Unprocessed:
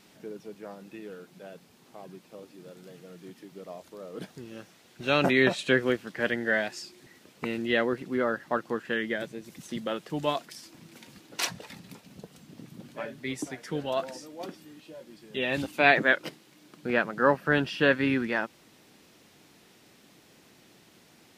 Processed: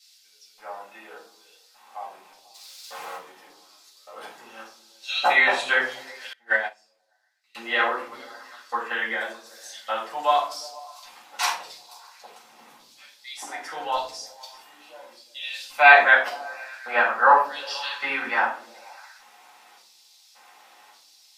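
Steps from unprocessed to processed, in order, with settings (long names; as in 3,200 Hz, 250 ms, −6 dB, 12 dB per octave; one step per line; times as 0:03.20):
0:02.54–0:03.16: leveller curve on the samples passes 5
auto-filter high-pass square 0.86 Hz 910–4,500 Hz
echo through a band-pass that steps 120 ms, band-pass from 170 Hz, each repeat 0.7 octaves, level −11.5 dB
rectangular room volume 360 cubic metres, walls furnished, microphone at 6.7 metres
0:06.33–0:07.55: expander for the loud parts 2.5 to 1, over −29 dBFS
level −5 dB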